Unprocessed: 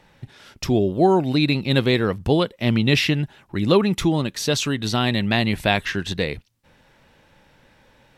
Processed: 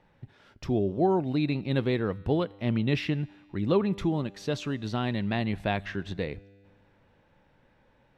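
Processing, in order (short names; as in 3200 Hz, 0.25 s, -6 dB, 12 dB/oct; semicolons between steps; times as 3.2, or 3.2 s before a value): LPF 1500 Hz 6 dB/oct; resonator 99 Hz, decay 1.9 s, mix 40%; gain -3 dB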